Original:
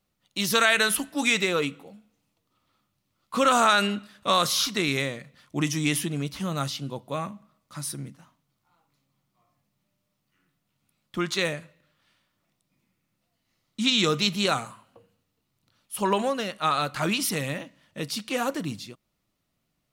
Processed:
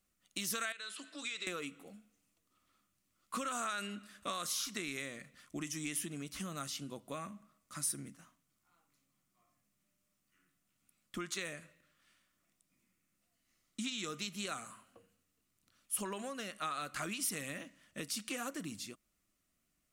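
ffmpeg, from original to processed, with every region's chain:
ffmpeg -i in.wav -filter_complex "[0:a]asettb=1/sr,asplit=3[link_01][link_02][link_03];[link_01]atrim=end=0.724[link_04];[link_02]atrim=start=0.72:end=1.47,asetpts=PTS-STARTPTS,afade=type=in:duration=0.004:curve=qsin,afade=type=out:start_time=0.746:duration=0.004:curve=qsin,acompressor=threshold=-34dB:ratio=2.5:attack=3.2:release=140:knee=1:detection=peak,highpass=440,equalizer=frequency=780:width_type=q:width=4:gain=-10,equalizer=frequency=1900:width_type=q:width=4:gain=-4,equalizer=frequency=4000:width_type=q:width=4:gain=8,equalizer=frequency=6000:width_type=q:width=4:gain=-8,lowpass=frequency=7200:width=0.5412,lowpass=frequency=7200:width=1.3066[link_05];[link_03]atrim=start=1.466[link_06];[link_04][link_05]acrossfade=duration=0.004:curve1=hsin:curve2=qsin[link_07];[link_07][link_06]acrossfade=duration=0.004:curve1=qsin:curve2=hsin,equalizer=frequency=890:width_type=o:width=0.32:gain=-11,acompressor=threshold=-33dB:ratio=6,equalizer=frequency=125:width_type=o:width=1:gain=-11,equalizer=frequency=500:width_type=o:width=1:gain=-6,equalizer=frequency=4000:width_type=o:width=1:gain=-6,equalizer=frequency=8000:width_type=o:width=1:gain=6,volume=-1.5dB" out.wav

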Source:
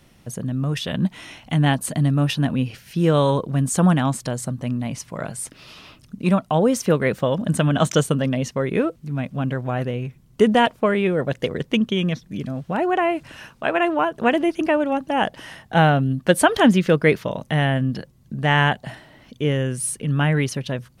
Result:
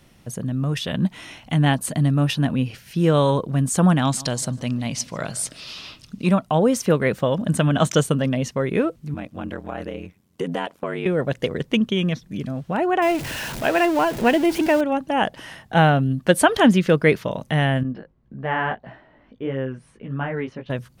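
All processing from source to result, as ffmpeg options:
ffmpeg -i in.wav -filter_complex "[0:a]asettb=1/sr,asplit=3[link_01][link_02][link_03];[link_01]atrim=end=4.024[link_04];[link_02]atrim=start=4.02:end=6.26,asetpts=PTS-STARTPTS,afade=type=in:duration=0.004:curve=qsin,afade=type=out:start_time=2.236:duration=0.004:curve=qsin,equalizer=frequency=4600:width=0.77:gain=10.5,asplit=2[link_05][link_06];[link_06]adelay=149,lowpass=frequency=2200:poles=1,volume=-19dB,asplit=2[link_07][link_08];[link_08]adelay=149,lowpass=frequency=2200:poles=1,volume=0.5,asplit=2[link_09][link_10];[link_10]adelay=149,lowpass=frequency=2200:poles=1,volume=0.5,asplit=2[link_11][link_12];[link_12]adelay=149,lowpass=frequency=2200:poles=1,volume=0.5[link_13];[link_05][link_07][link_09][link_11][link_13]amix=inputs=5:normalize=0,atrim=end_sample=98784[link_14];[link_03]atrim=start=6.256[link_15];[link_04][link_14]acrossfade=duration=0.004:curve1=hsin:curve2=qsin[link_16];[link_16][link_15]acrossfade=duration=0.004:curve1=qsin:curve2=hsin,asettb=1/sr,asplit=3[link_17][link_18][link_19];[link_17]atrim=end=9.144[link_20];[link_18]atrim=start=9.14:end=11.06,asetpts=PTS-STARTPTS,afade=type=in:duration=0.004:curve=qsin,afade=type=out:start_time=1.916:duration=0.004:curve=qsin,highpass=200,aeval=exprs='val(0)*sin(2*PI*45*n/s)':channel_layout=same,acompressor=threshold=-24dB:ratio=2.5:attack=3.2:release=140:knee=1:detection=peak[link_21];[link_19]atrim=start=11.056[link_22];[link_20][link_21]acrossfade=duration=0.004:curve1=hsin:curve2=qsin[link_23];[link_23][link_22]acrossfade=duration=0.004:curve1=qsin:curve2=hsin,asettb=1/sr,asplit=3[link_24][link_25][link_26];[link_24]atrim=end=13.024[link_27];[link_25]atrim=start=13.02:end=14.81,asetpts=PTS-STARTPTS,afade=type=in:duration=0.004:curve=qsin,afade=type=out:start_time=1.786:duration=0.004:curve=qsin,aeval=exprs='val(0)+0.5*0.0531*sgn(val(0))':channel_layout=same,equalizer=frequency=1200:width_type=o:width=0.3:gain=-6[link_28];[link_26]atrim=start=14.806[link_29];[link_27][link_28]acrossfade=duration=0.004:curve1=hsin:curve2=qsin[link_30];[link_30][link_29]acrossfade=duration=0.004:curve1=qsin:curve2=hsin,asettb=1/sr,asplit=3[link_31][link_32][link_33];[link_31]atrim=end=17.834[link_34];[link_32]atrim=start=17.83:end=20.7,asetpts=PTS-STARTPTS,afade=type=in:duration=0.004:curve=qsin,afade=type=out:start_time=2.866:duration=0.004:curve=qsin,lowpass=1700,equalizer=frequency=120:width_type=o:width=1.3:gain=-7.5,flanger=delay=15:depth=3.9:speed=1.7[link_35];[link_33]atrim=start=20.696[link_36];[link_34][link_35]acrossfade=duration=0.004:curve1=hsin:curve2=qsin[link_37];[link_37][link_36]acrossfade=duration=0.004:curve1=qsin:curve2=hsin" out.wav

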